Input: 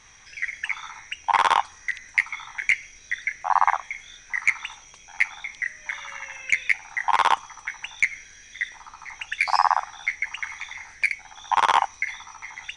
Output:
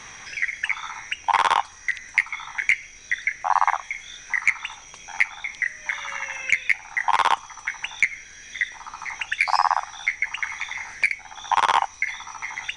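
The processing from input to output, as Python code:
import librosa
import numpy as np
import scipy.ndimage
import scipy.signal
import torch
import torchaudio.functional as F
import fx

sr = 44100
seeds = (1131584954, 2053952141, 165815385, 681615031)

y = fx.band_squash(x, sr, depth_pct=40)
y = y * 10.0 ** (1.5 / 20.0)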